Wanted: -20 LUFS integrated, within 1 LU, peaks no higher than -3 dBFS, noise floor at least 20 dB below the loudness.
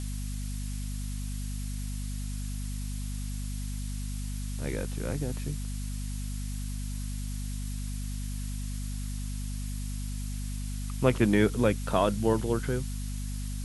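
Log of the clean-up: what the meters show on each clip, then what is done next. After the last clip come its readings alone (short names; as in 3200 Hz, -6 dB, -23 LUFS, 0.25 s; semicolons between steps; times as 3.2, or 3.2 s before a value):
hum 50 Hz; harmonics up to 250 Hz; hum level -32 dBFS; noise floor -34 dBFS; noise floor target -53 dBFS; loudness -32.5 LUFS; peak -9.5 dBFS; loudness target -20.0 LUFS
-> de-hum 50 Hz, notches 5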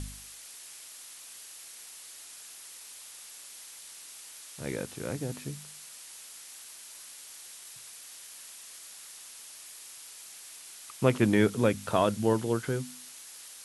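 hum none; noise floor -48 dBFS; noise floor target -55 dBFS
-> denoiser 7 dB, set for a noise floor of -48 dBFS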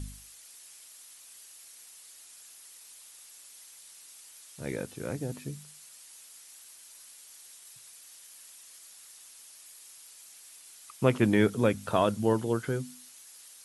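noise floor -52 dBFS; loudness -29.0 LUFS; peak -9.5 dBFS; loudness target -20.0 LUFS
-> gain +9 dB; limiter -3 dBFS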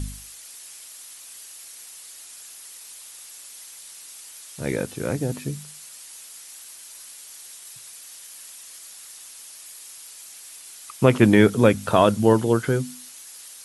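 loudness -20.5 LUFS; peak -3.0 dBFS; noise floor -43 dBFS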